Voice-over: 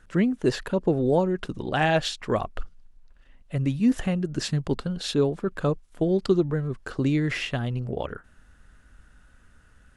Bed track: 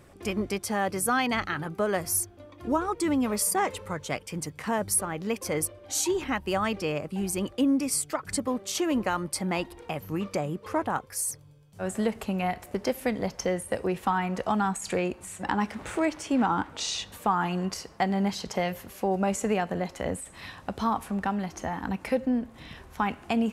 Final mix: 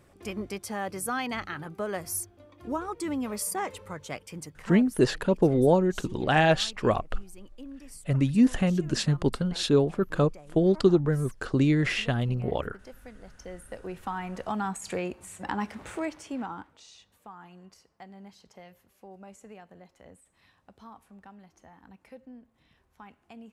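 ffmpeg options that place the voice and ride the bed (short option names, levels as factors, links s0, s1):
-filter_complex "[0:a]adelay=4550,volume=1.12[s0];[1:a]volume=3.35,afade=t=out:st=4.31:d=0.65:silence=0.188365,afade=t=in:st=13.26:d=1.47:silence=0.158489,afade=t=out:st=15.78:d=1.04:silence=0.133352[s1];[s0][s1]amix=inputs=2:normalize=0"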